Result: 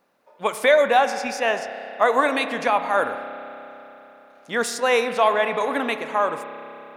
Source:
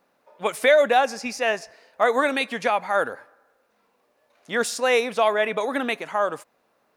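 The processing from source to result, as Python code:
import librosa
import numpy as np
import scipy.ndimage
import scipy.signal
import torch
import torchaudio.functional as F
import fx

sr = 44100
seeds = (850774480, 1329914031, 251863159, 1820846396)

y = fx.rev_spring(x, sr, rt60_s=3.7, pass_ms=(30,), chirp_ms=35, drr_db=8.5)
y = fx.dynamic_eq(y, sr, hz=1000.0, q=2.9, threshold_db=-35.0, ratio=4.0, max_db=5)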